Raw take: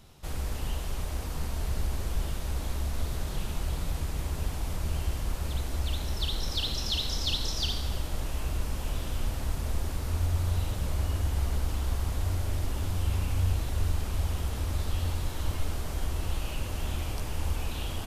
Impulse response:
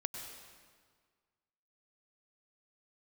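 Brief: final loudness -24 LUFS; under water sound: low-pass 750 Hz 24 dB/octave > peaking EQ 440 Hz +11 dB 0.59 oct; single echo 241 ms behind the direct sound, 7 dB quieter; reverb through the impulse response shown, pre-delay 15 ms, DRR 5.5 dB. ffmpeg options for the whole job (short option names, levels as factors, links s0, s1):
-filter_complex "[0:a]aecho=1:1:241:0.447,asplit=2[s0][s1];[1:a]atrim=start_sample=2205,adelay=15[s2];[s1][s2]afir=irnorm=-1:irlink=0,volume=0.531[s3];[s0][s3]amix=inputs=2:normalize=0,lowpass=f=750:w=0.5412,lowpass=f=750:w=1.3066,equalizer=f=440:t=o:w=0.59:g=11,volume=2.24"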